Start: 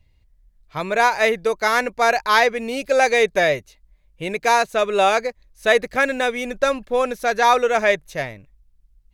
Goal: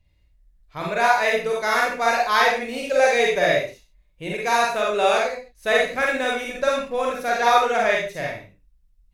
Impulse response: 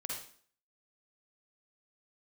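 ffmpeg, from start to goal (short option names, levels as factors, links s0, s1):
-filter_complex "[1:a]atrim=start_sample=2205,afade=t=out:st=0.31:d=0.01,atrim=end_sample=14112,asetrate=52920,aresample=44100[s0];[0:a][s0]afir=irnorm=-1:irlink=0"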